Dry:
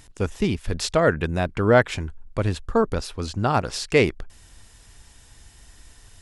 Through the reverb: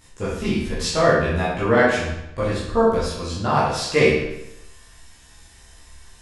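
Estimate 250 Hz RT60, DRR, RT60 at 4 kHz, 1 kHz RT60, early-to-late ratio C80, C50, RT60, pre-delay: 0.85 s, −10.5 dB, 0.75 s, 0.85 s, 4.0 dB, 0.5 dB, 0.85 s, 13 ms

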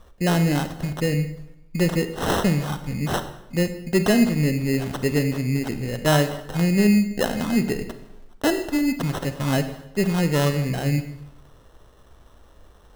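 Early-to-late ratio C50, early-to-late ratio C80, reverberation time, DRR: 11.0 dB, 13.0 dB, 0.85 s, 9.5 dB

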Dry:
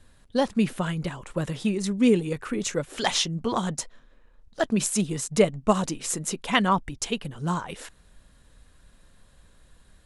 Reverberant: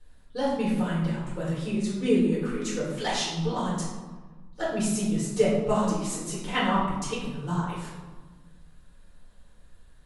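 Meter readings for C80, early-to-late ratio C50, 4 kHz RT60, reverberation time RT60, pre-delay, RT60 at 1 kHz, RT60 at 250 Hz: 4.0 dB, 1.5 dB, 0.75 s, 1.3 s, 4 ms, 1.4 s, 1.9 s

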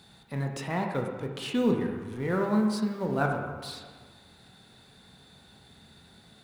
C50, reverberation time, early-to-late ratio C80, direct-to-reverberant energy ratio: 4.5 dB, 1.5 s, 6.0 dB, 2.0 dB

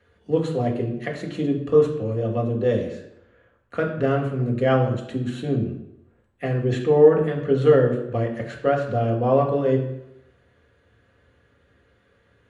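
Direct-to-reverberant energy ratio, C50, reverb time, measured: −0.5 dB, 7.5 dB, 0.85 s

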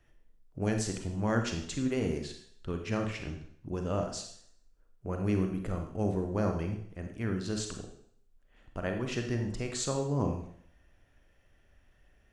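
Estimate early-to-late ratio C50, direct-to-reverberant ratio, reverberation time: 6.5 dB, 4.0 dB, 0.60 s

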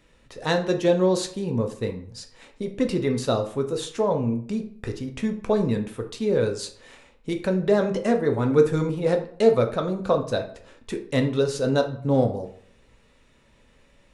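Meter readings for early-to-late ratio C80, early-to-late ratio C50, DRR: 14.5 dB, 11.0 dB, 4.0 dB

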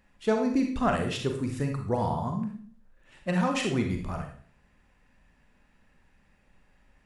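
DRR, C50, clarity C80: 3.0 dB, 5.5 dB, 10.5 dB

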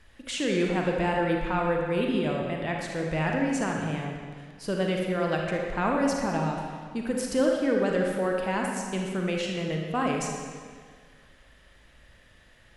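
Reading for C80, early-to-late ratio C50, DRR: 3.5 dB, 1.0 dB, 0.0 dB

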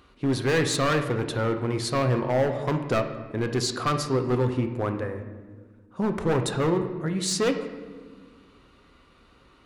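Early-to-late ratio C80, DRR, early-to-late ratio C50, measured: 10.5 dB, 5.5 dB, 8.5 dB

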